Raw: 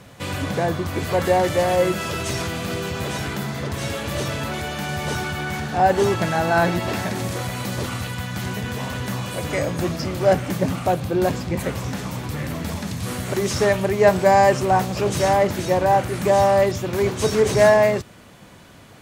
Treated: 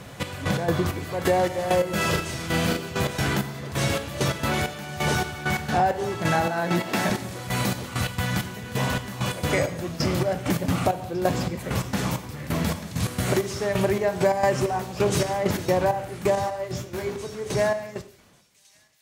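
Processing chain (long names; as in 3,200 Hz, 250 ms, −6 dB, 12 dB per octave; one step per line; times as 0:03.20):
fade-out on the ending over 3.69 s
gate pattern "xx..x.xx..." 132 BPM −12 dB
0:02.09–0:02.77: double-tracking delay 37 ms −2.5 dB
reverb whose tail is shaped and stops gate 220 ms falling, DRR 10 dB
downward compressor 5 to 1, threshold −22 dBFS, peak gain reduction 10.5 dB
0:06.46–0:07.10: high-pass filter 140 Hz 24 dB per octave
on a send: delay with a high-pass on its return 1,147 ms, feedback 55%, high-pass 3,400 Hz, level −20 dB
0:16.35–0:17.16: on the sum: micro pitch shift up and down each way 17 cents
level +3.5 dB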